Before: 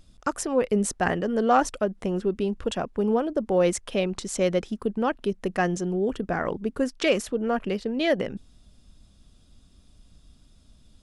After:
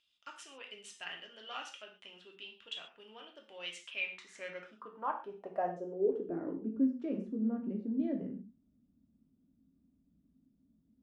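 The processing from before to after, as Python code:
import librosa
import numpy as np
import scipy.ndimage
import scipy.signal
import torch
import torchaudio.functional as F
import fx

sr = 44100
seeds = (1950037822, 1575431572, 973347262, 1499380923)

y = fx.filter_sweep_bandpass(x, sr, from_hz=3000.0, to_hz=240.0, start_s=3.76, end_s=6.76, q=5.0)
y = fx.rev_gated(y, sr, seeds[0], gate_ms=160, shape='falling', drr_db=1.0)
y = F.gain(torch.from_numpy(y), -2.5).numpy()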